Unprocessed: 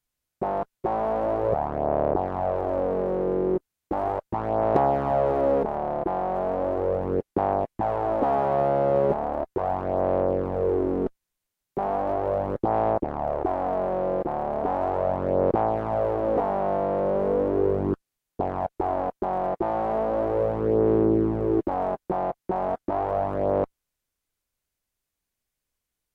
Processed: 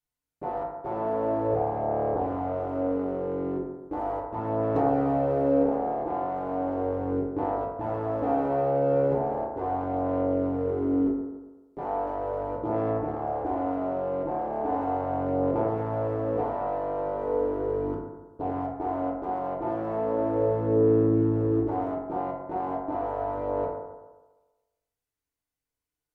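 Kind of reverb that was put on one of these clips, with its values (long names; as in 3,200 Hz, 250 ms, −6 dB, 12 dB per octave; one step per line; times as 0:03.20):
feedback delay network reverb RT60 1.2 s, low-frequency decay 0.85×, high-frequency decay 0.35×, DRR −5 dB
level −11 dB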